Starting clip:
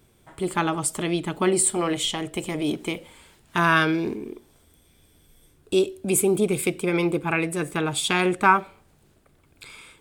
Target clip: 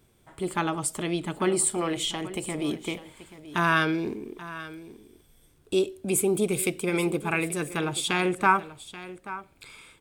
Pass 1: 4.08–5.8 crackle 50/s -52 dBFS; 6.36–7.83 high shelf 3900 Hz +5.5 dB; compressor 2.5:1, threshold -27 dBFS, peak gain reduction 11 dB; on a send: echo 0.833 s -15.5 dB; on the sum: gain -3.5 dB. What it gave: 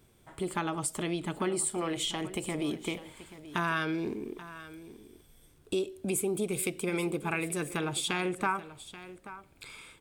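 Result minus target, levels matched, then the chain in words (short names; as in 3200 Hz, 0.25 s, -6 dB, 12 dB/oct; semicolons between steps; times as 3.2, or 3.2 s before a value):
compressor: peak gain reduction +11 dB
4.08–5.8 crackle 50/s -52 dBFS; 6.36–7.83 high shelf 3900 Hz +5.5 dB; on a send: echo 0.833 s -15.5 dB; on the sum: gain -3.5 dB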